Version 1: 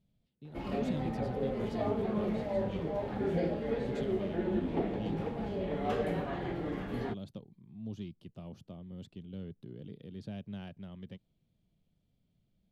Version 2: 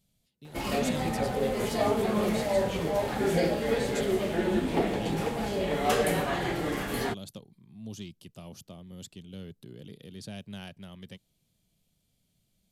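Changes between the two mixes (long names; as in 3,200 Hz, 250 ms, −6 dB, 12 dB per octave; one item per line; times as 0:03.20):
background +4.5 dB
master: remove drawn EQ curve 300 Hz 0 dB, 3,500 Hz −10 dB, 8,400 Hz −24 dB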